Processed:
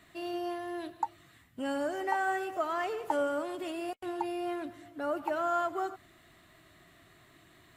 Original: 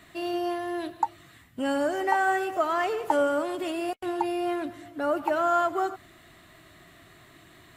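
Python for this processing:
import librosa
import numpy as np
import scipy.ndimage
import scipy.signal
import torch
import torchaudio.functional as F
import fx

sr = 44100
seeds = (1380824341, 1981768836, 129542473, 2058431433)

y = fx.dmg_crackle(x, sr, seeds[0], per_s=31.0, level_db=-55.0)
y = y * 10.0 ** (-6.5 / 20.0)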